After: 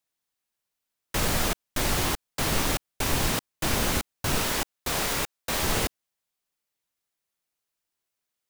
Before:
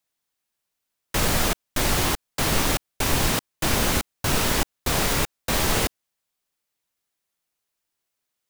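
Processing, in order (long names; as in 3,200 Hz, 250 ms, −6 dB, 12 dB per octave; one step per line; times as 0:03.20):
0:04.43–0:05.63: low-shelf EQ 260 Hz −7 dB
level −3.5 dB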